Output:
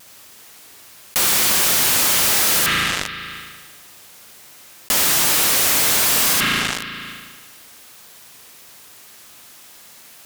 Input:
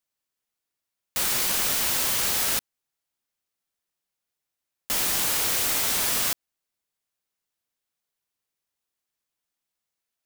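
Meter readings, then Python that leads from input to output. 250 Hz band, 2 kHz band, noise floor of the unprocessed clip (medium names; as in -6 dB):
+11.0 dB, +11.5 dB, -85 dBFS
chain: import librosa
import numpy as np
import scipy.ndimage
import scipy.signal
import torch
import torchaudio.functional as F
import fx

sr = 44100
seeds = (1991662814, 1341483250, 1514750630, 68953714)

p1 = fx.vibrato(x, sr, rate_hz=1.4, depth_cents=34.0)
p2 = fx.highpass(p1, sr, hz=110.0, slope=6)
p3 = p2 + fx.echo_single(p2, sr, ms=73, db=-5.0, dry=0)
p4 = fx.rev_spring(p3, sr, rt60_s=1.3, pass_ms=(36,), chirp_ms=65, drr_db=9.0)
p5 = fx.fuzz(p4, sr, gain_db=49.0, gate_db=-52.0)
p6 = p4 + F.gain(torch.from_numpy(p5), -7.0).numpy()
y = fx.env_flatten(p6, sr, amount_pct=70)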